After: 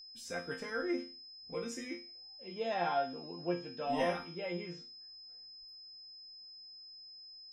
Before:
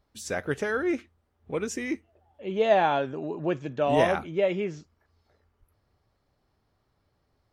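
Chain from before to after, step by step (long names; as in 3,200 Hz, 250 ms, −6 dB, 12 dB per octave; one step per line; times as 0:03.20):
resonators tuned to a chord F3 sus4, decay 0.35 s
steady tone 5,100 Hz −57 dBFS
level +7 dB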